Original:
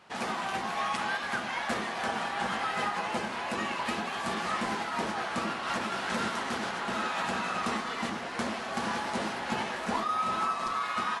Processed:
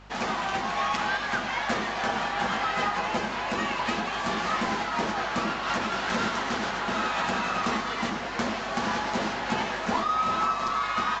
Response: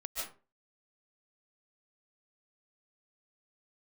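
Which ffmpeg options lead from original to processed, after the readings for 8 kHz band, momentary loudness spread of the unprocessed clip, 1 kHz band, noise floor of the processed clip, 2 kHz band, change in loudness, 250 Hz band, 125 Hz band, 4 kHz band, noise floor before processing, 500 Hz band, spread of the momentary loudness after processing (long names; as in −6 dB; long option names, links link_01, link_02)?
+2.0 dB, 3 LU, +4.0 dB, −32 dBFS, +4.0 dB, +4.0 dB, +4.0 dB, +4.5 dB, +4.0 dB, −36 dBFS, +4.0 dB, 3 LU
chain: -af "aeval=exprs='val(0)+0.002*(sin(2*PI*50*n/s)+sin(2*PI*2*50*n/s)/2+sin(2*PI*3*50*n/s)/3+sin(2*PI*4*50*n/s)/4+sin(2*PI*5*50*n/s)/5)':channel_layout=same,volume=4dB" -ar 16000 -c:a pcm_alaw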